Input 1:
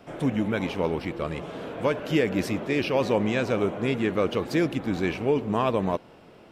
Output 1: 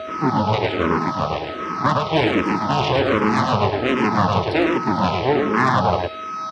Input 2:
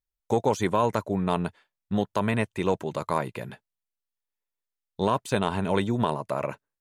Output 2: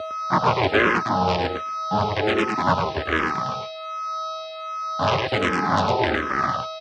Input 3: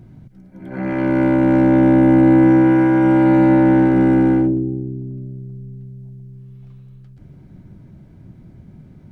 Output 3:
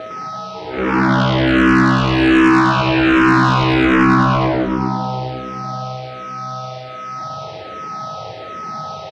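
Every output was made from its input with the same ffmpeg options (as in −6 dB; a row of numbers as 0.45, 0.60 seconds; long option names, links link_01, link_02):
-filter_complex "[0:a]aeval=exprs='val(0)+0.0501*sin(2*PI*640*n/s)':channel_layout=same,aresample=11025,acrusher=bits=5:mix=0:aa=0.5,aresample=44100,aemphasis=mode=reproduction:type=50kf,aeval=exprs='0.708*(cos(1*acos(clip(val(0)/0.708,-1,1)))-cos(1*PI/2))+0.178*(cos(3*acos(clip(val(0)/0.708,-1,1)))-cos(3*PI/2))+0.0891*(cos(8*acos(clip(val(0)/0.708,-1,1)))-cos(8*PI/2))':channel_layout=same,asoftclip=type=tanh:threshold=-13dB,highpass=frequency=87:width=0.5412,highpass=frequency=87:width=1.3066,bandreject=frequency=490:width=12,asplit=2[link_01][link_02];[link_02]aecho=0:1:107:0.668[link_03];[link_01][link_03]amix=inputs=2:normalize=0,apsyclip=20dB,asplit=2[link_04][link_05];[link_05]afreqshift=-1.3[link_06];[link_04][link_06]amix=inputs=2:normalize=1,volume=-5.5dB"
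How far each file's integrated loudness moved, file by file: +7.0, +4.5, −0.5 LU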